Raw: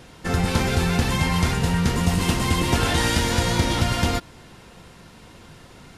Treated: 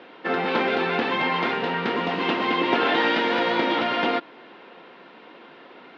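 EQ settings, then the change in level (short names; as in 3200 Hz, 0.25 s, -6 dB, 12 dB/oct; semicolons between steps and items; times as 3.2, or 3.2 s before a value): HPF 280 Hz 24 dB/oct; LPF 3600 Hz 24 dB/oct; air absorption 130 m; +4.0 dB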